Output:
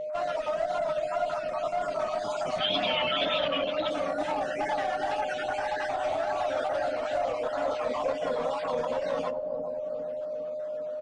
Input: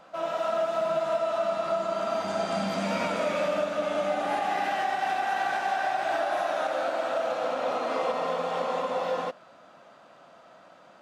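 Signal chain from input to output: random spectral dropouts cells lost 32%; reverb removal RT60 1.3 s; comb 7.4 ms, depth 79%; limiter -22 dBFS, peak gain reduction 7 dB; one-sided clip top -28 dBFS, bottom -24 dBFS; 2.58–3.88 synth low-pass 3200 Hz, resonance Q 11; wow and flutter 120 cents; analogue delay 0.403 s, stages 2048, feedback 67%, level -5.5 dB; on a send at -15.5 dB: reverb RT60 0.65 s, pre-delay 5 ms; on the sum: whine 610 Hz -31 dBFS; MP3 56 kbps 22050 Hz

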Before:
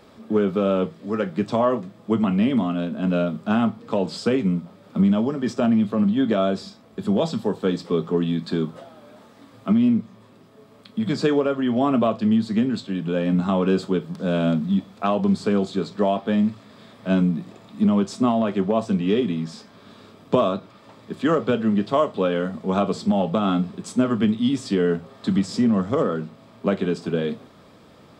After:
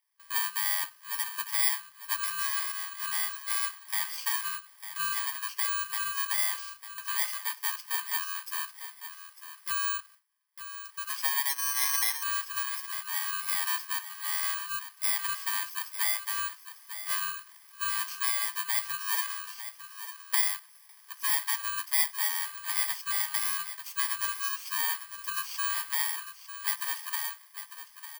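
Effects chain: FFT order left unsorted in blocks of 32 samples; steep high-pass 970 Hz 48 dB/oct; on a send: echo 0.9 s -11.5 dB; 11.49–12.23 on the sum: careless resampling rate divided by 6×, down filtered, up zero stuff; gate with hold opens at -40 dBFS; gain -4.5 dB

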